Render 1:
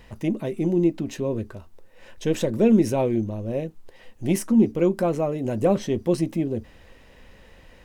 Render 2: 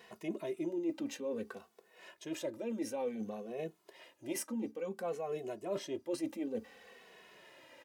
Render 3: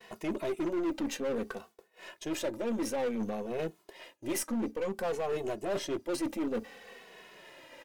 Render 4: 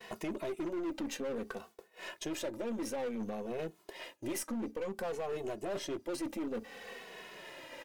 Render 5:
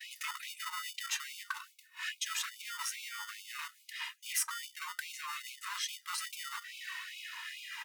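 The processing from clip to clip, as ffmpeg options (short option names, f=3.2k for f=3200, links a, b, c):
-filter_complex "[0:a]highpass=360,areverse,acompressor=threshold=-32dB:ratio=6,areverse,asplit=2[a][b];[b]adelay=2.3,afreqshift=-0.57[c];[a][c]amix=inputs=2:normalize=1"
-af "aeval=exprs='0.0562*(cos(1*acos(clip(val(0)/0.0562,-1,1)))-cos(1*PI/2))+0.00355*(cos(8*acos(clip(val(0)/0.0562,-1,1)))-cos(8*PI/2))':c=same,asoftclip=type=hard:threshold=-34.5dB,agate=range=-33dB:threshold=-56dB:ratio=3:detection=peak,volume=7dB"
-af "acompressor=threshold=-41dB:ratio=3,volume=3.5dB"
-filter_complex "[0:a]acrossover=split=410[a][b];[a]acrusher=samples=27:mix=1:aa=0.000001[c];[c][b]amix=inputs=2:normalize=0,afftfilt=real='re*gte(b*sr/1024,850*pow(2200/850,0.5+0.5*sin(2*PI*2.4*pts/sr)))':imag='im*gte(b*sr/1024,850*pow(2200/850,0.5+0.5*sin(2*PI*2.4*pts/sr)))':win_size=1024:overlap=0.75,volume=7.5dB"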